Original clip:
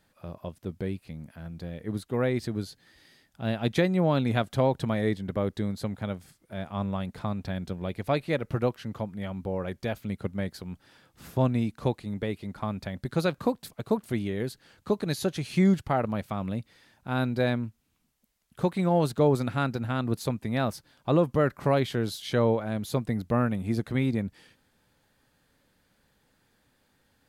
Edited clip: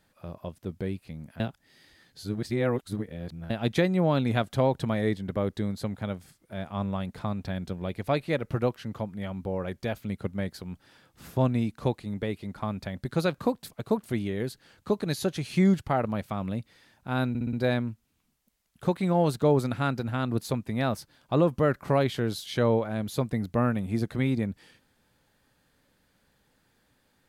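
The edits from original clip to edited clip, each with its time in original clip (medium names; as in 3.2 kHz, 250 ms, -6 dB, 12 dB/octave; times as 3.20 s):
1.40–3.50 s: reverse
17.29 s: stutter 0.06 s, 5 plays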